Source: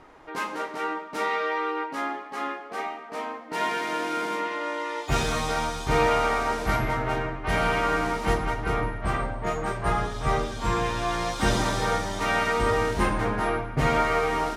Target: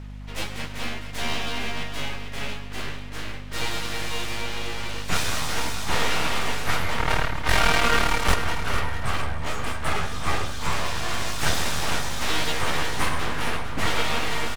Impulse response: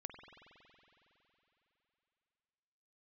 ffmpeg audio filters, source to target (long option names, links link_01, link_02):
-filter_complex "[0:a]equalizer=frequency=310:width=0.46:gain=-13,asettb=1/sr,asplit=3[link_01][link_02][link_03];[link_01]atrim=end=6.984[link_04];[link_02]atrim=start=6.98:end=8.35,asetpts=PTS-STARTPTS,afade=type=in:duration=0.004:curve=qsin,afade=type=out:start_time=1.366:duration=0.004:curve=qsin,aeval=exprs='0.2*(cos(1*acos(clip(val(0)/0.2,-1,1)))-cos(1*PI/2))+0.0447*(cos(8*acos(clip(val(0)/0.2,-1,1)))-cos(8*PI/2))':channel_layout=same[link_05];[link_03]atrim=start=8.346[link_06];[link_04][link_05]acrossfade=duration=0.004:curve1=hsin:curve2=qsin[link_07];[link_07][link_06]acrossfade=duration=0.004:curve1=qsin:curve2=hsin,aeval=exprs='abs(val(0))':channel_layout=same,aeval=exprs='val(0)+0.00794*(sin(2*PI*50*n/s)+sin(2*PI*2*50*n/s)/2+sin(2*PI*3*50*n/s)/3+sin(2*PI*4*50*n/s)/4+sin(2*PI*5*50*n/s)/5)':channel_layout=same,asplit=2[link_08][link_09];[link_09]aecho=0:1:452|904|1356|1808:0.316|0.104|0.0344|0.0114[link_10];[link_08][link_10]amix=inputs=2:normalize=0,volume=6dB"